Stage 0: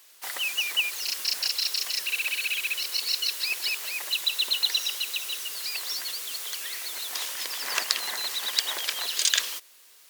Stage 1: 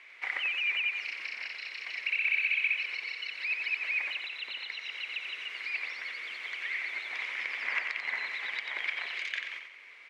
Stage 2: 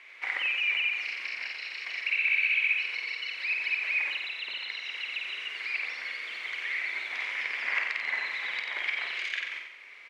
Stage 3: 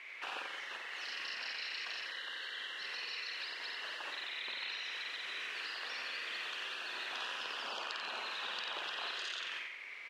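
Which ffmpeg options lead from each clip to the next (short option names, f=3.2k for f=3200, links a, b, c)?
-af "acompressor=threshold=-40dB:ratio=3,lowpass=f=2.2k:t=q:w=10,aecho=1:1:90|180|270|360|450:0.501|0.216|0.0927|0.0398|0.0171"
-filter_complex "[0:a]asplit=2[a][b];[b]adelay=50,volume=-5dB[c];[a][c]amix=inputs=2:normalize=0,volume=1.5dB"
-af "afftfilt=real='re*lt(hypot(re,im),0.0398)':imag='im*lt(hypot(re,im),0.0398)':win_size=1024:overlap=0.75,volume=1dB"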